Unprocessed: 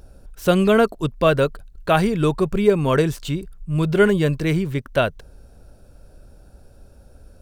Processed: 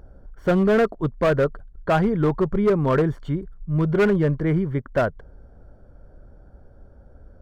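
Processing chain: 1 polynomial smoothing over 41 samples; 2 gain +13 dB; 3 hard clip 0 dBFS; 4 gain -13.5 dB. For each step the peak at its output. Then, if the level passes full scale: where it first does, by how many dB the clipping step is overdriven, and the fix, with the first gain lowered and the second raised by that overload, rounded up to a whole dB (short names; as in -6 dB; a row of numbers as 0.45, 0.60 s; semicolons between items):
-4.0, +9.0, 0.0, -13.5 dBFS; step 2, 9.0 dB; step 2 +4 dB, step 4 -4.5 dB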